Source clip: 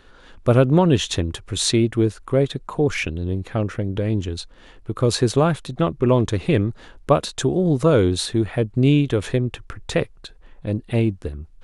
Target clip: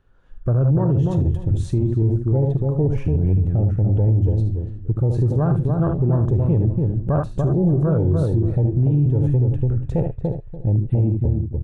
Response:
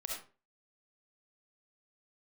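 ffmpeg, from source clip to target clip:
-filter_complex "[0:a]aecho=1:1:75:0.335,asplit=2[link_01][link_02];[1:a]atrim=start_sample=2205,atrim=end_sample=6174,asetrate=57330,aresample=44100[link_03];[link_02][link_03]afir=irnorm=-1:irlink=0,volume=-4.5dB[link_04];[link_01][link_04]amix=inputs=2:normalize=0,afwtdn=0.112,equalizer=frequency=125:width_type=o:width=1:gain=6,equalizer=frequency=250:width_type=o:width=1:gain=-7,equalizer=frequency=500:width_type=o:width=1:gain=-5,equalizer=frequency=1000:width_type=o:width=1:gain=-5,equalizer=frequency=2000:width_type=o:width=1:gain=-7,equalizer=frequency=4000:width_type=o:width=1:gain=-11,equalizer=frequency=8000:width_type=o:width=1:gain=-4,acompressor=threshold=-18dB:ratio=6,asplit=2[link_05][link_06];[link_06]adelay=290,lowpass=frequency=1000:poles=1,volume=-5dB,asplit=2[link_07][link_08];[link_08]adelay=290,lowpass=frequency=1000:poles=1,volume=0.23,asplit=2[link_09][link_10];[link_10]adelay=290,lowpass=frequency=1000:poles=1,volume=0.23[link_11];[link_07][link_09][link_11]amix=inputs=3:normalize=0[link_12];[link_05][link_12]amix=inputs=2:normalize=0,alimiter=limit=-17dB:level=0:latency=1:release=38,highshelf=frequency=3600:gain=-10,volume=6.5dB"

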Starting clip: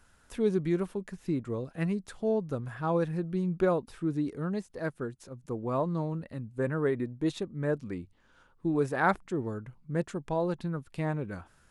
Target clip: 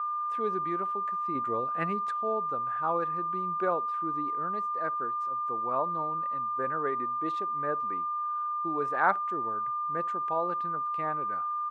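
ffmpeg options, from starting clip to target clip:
ffmpeg -i in.wav -filter_complex "[0:a]asettb=1/sr,asplit=3[link_01][link_02][link_03];[link_01]atrim=end=1.354[link_04];[link_02]atrim=start=1.35:end=2.11,asetpts=PTS-STARTPTS,afade=type=in:duration=0.004:curve=qsin,afade=type=out:start_time=0.756:duration=0.004:curve=qsin,acontrast=49[link_05];[link_03]atrim=start=2.106[link_06];[link_04][link_05]acrossfade=duration=0.004:curve1=hsin:curve2=qsin[link_07];[link_07][link_06]acrossfade=duration=0.004:curve1=qsin:curve2=hsin,aeval=exprs='val(0)+0.0282*sin(2*PI*1200*n/s)':channel_layout=same,bandpass=frequency=1100:width_type=q:width=0.99:csg=0,asplit=2[link_08][link_09];[link_09]adelay=62,lowpass=frequency=1000:poles=1,volume=-22dB,asplit=2[link_10][link_11];[link_11]adelay=62,lowpass=frequency=1000:poles=1,volume=0.21[link_12];[link_08][link_10][link_12]amix=inputs=3:normalize=0,volume=2.5dB" out.wav

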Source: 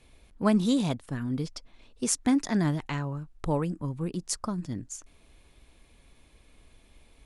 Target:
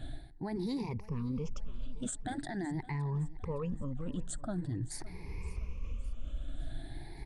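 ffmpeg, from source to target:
ffmpeg -i in.wav -af "afftfilt=real='re*pow(10,21/40*sin(2*PI*(0.82*log(max(b,1)*sr/1024/100)/log(2)-(0.45)*(pts-256)/sr)))':imag='im*pow(10,21/40*sin(2*PI*(0.82*log(max(b,1)*sr/1024/100)/log(2)-(0.45)*(pts-256)/sr)))':win_size=1024:overlap=0.75,aemphasis=mode=reproduction:type=bsi,afftfilt=real='re*lt(hypot(re,im),1.58)':imag='im*lt(hypot(re,im),1.58)':win_size=1024:overlap=0.75,adynamicequalizer=threshold=0.00158:dfrequency=8000:dqfactor=4.6:tfrequency=8000:tqfactor=4.6:attack=5:release=100:ratio=0.375:range=4:mode=boostabove:tftype=bell,areverse,acompressor=threshold=-36dB:ratio=10,areverse,alimiter=level_in=10.5dB:limit=-24dB:level=0:latency=1:release=72,volume=-10.5dB,aecho=1:1:564|1128|1692|2256:0.112|0.0595|0.0315|0.0167,volume=6dB" out.wav

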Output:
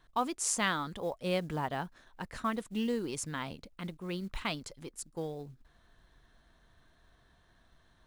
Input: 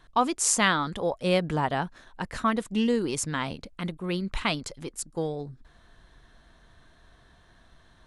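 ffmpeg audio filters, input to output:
ffmpeg -i in.wav -af "acrusher=bits=7:mode=log:mix=0:aa=0.000001,volume=-8dB" out.wav

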